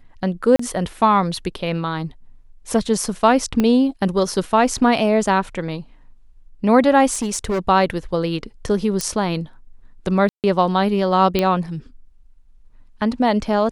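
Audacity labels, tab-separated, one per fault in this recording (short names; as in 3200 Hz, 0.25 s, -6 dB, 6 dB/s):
0.560000	0.590000	gap 34 ms
3.600000	3.600000	pop -7 dBFS
7.120000	7.590000	clipped -17.5 dBFS
9.010000	9.010000	pop -8 dBFS
10.290000	10.440000	gap 0.148 s
11.390000	11.390000	pop -6 dBFS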